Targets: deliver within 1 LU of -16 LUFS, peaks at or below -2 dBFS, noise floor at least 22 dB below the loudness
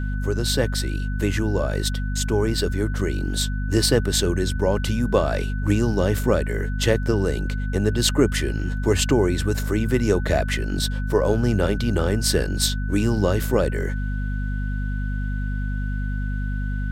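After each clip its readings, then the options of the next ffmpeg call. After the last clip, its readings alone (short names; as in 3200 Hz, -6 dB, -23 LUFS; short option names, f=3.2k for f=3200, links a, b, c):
hum 50 Hz; harmonics up to 250 Hz; hum level -23 dBFS; steady tone 1500 Hz; tone level -37 dBFS; loudness -23.0 LUFS; peak -4.0 dBFS; loudness target -16.0 LUFS
-> -af "bandreject=f=50:t=h:w=6,bandreject=f=100:t=h:w=6,bandreject=f=150:t=h:w=6,bandreject=f=200:t=h:w=6,bandreject=f=250:t=h:w=6"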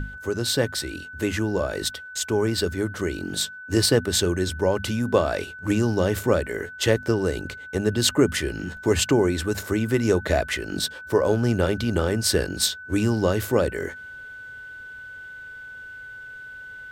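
hum none; steady tone 1500 Hz; tone level -37 dBFS
-> -af "bandreject=f=1.5k:w=30"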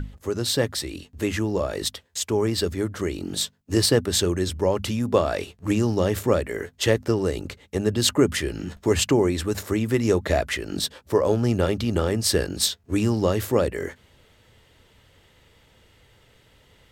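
steady tone none; loudness -24.0 LUFS; peak -5.0 dBFS; loudness target -16.0 LUFS
-> -af "volume=8dB,alimiter=limit=-2dB:level=0:latency=1"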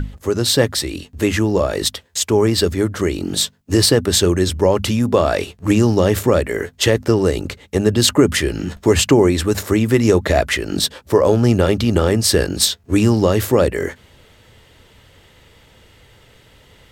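loudness -16.5 LUFS; peak -2.0 dBFS; noise floor -51 dBFS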